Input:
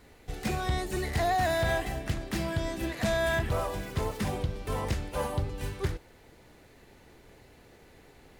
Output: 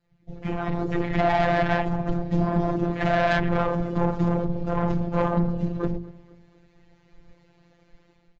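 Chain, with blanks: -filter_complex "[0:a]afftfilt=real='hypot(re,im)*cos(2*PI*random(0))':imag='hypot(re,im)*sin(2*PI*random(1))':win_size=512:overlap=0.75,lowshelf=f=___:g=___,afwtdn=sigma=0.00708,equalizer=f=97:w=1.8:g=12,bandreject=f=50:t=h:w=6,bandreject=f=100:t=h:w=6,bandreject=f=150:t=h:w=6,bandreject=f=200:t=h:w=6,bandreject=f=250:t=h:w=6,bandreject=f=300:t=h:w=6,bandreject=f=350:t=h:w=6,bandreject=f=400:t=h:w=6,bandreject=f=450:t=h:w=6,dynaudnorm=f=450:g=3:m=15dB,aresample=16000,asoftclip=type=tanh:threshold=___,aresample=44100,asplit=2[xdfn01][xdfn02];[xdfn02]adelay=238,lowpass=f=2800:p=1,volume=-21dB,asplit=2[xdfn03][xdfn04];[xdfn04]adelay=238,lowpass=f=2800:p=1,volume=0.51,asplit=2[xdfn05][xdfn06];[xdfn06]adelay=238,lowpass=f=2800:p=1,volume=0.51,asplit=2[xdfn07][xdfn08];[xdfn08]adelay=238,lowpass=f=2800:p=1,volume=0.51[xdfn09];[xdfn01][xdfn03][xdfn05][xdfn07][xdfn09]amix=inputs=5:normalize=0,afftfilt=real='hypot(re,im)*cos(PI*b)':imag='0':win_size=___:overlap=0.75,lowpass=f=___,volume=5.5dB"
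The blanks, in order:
370, 2.5, -19dB, 1024, 6200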